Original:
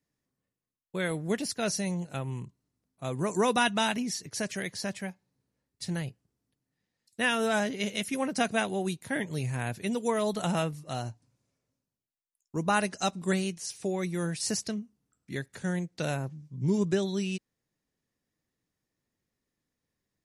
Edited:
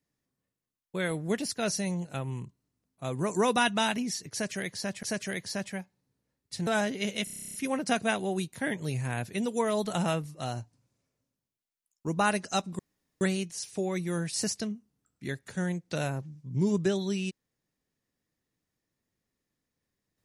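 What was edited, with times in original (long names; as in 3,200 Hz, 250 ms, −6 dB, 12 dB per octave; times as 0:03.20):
0:04.32–0:05.03: repeat, 2 plays
0:05.96–0:07.46: remove
0:08.03: stutter 0.03 s, 11 plays
0:13.28: splice in room tone 0.42 s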